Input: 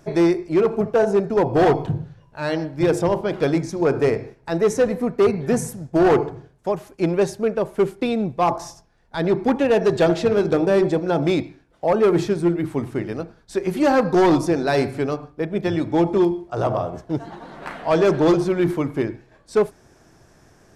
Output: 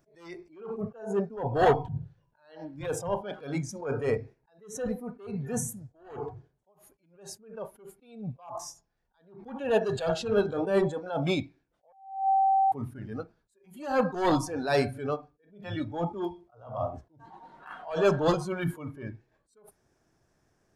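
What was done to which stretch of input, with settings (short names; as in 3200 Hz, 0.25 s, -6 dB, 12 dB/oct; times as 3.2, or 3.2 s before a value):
11.92–12.72 bleep 775 Hz -17 dBFS
whole clip: spectral noise reduction 15 dB; dynamic EQ 300 Hz, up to -5 dB, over -33 dBFS, Q 1.7; attack slew limiter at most 110 dB/s; gain -2.5 dB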